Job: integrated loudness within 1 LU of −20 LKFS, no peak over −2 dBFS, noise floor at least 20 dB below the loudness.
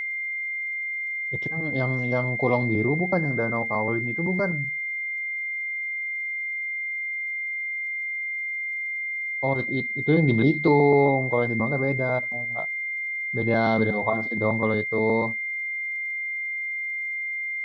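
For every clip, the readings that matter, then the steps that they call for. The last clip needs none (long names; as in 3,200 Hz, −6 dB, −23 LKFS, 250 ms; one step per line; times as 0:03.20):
crackle rate 47 per second; interfering tone 2,100 Hz; level of the tone −27 dBFS; integrated loudness −24.5 LKFS; sample peak −7.5 dBFS; target loudness −20.0 LKFS
→ click removal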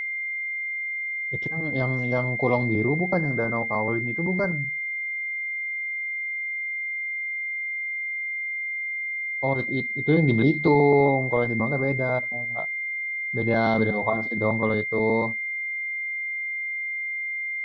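crackle rate 0.17 per second; interfering tone 2,100 Hz; level of the tone −27 dBFS
→ notch filter 2,100 Hz, Q 30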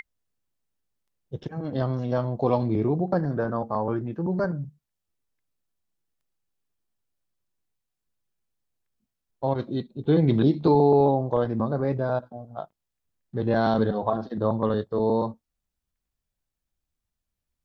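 interfering tone none found; integrated loudness −25.0 LKFS; sample peak −8.5 dBFS; target loudness −20.0 LKFS
→ level +5 dB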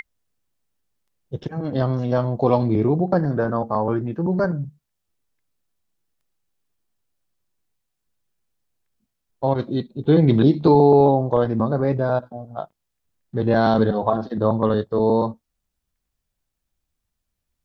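integrated loudness −20.0 LKFS; sample peak −3.5 dBFS; background noise floor −79 dBFS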